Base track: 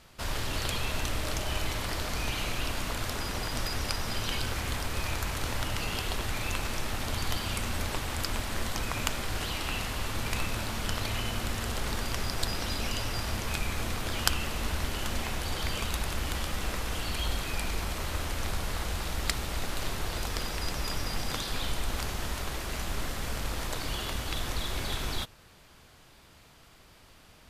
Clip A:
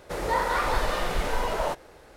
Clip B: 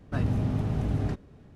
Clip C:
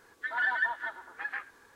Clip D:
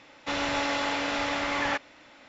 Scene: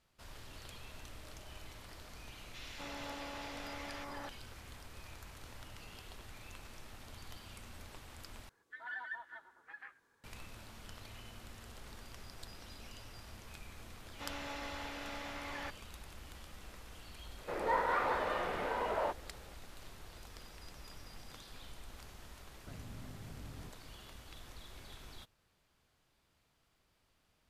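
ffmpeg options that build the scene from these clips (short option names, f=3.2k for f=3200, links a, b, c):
-filter_complex "[4:a]asplit=2[a][b];[0:a]volume=-19.5dB[c];[a]acrossover=split=1800[d][e];[d]adelay=250[f];[f][e]amix=inputs=2:normalize=0[g];[3:a]equalizer=f=140:w=1.5:g=6[h];[1:a]highpass=220,lowpass=2.5k[i];[2:a]acompressor=threshold=-32dB:ratio=6:attack=3.2:release=140:knee=1:detection=peak[j];[c]asplit=2[k][l];[k]atrim=end=8.494[m];[h]atrim=end=1.75,asetpts=PTS-STARTPTS,volume=-15dB[n];[l]atrim=start=10.236[o];[g]atrim=end=2.28,asetpts=PTS-STARTPTS,volume=-16dB,afade=t=in:d=0.004:c=hsin,afade=t=out:st=2.276:d=0.004:c=hsin,adelay=2270[p];[b]atrim=end=2.28,asetpts=PTS-STARTPTS,volume=-16dB,afade=t=in:d=0.004:c=hsin,afade=t=out:st=2.276:d=0.004:c=hsin,adelay=13930[q];[i]atrim=end=2.16,asetpts=PTS-STARTPTS,volume=-6.5dB,afade=t=in:d=0.004:c=hsin,afade=t=out:st=2.156:d=0.004:c=hsin,adelay=17380[r];[j]atrim=end=1.55,asetpts=PTS-STARTPTS,volume=-14.5dB,afade=t=in:d=0.004:c=hsin,afade=t=out:st=1.546:d=0.004:c=hsin,adelay=22550[s];[m][n]acrossfade=d=0.004:c1=hsin:c2=hsin[t];[t][o]acrossfade=d=0.004:c1=hsin:c2=hsin[u];[u][p][q][r][s]amix=inputs=5:normalize=0"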